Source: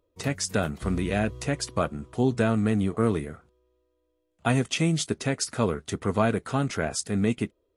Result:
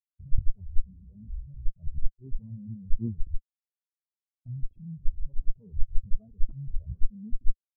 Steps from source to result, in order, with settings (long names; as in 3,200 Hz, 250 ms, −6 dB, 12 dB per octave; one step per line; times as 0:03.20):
on a send: delay with a high-pass on its return 146 ms, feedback 41%, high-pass 1,400 Hz, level −3.5 dB
on the sum: rotating-speaker cabinet horn 6.7 Hz
soft clipping −24 dBFS, distortion −10 dB
low-shelf EQ 85 Hz +10 dB
output level in coarse steps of 10 dB
downsampling to 22,050 Hz
comparator with hysteresis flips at −34.5 dBFS
compressor whose output falls as the input rises −40 dBFS, ratio −0.5
every bin expanded away from the loudest bin 4 to 1
level +12.5 dB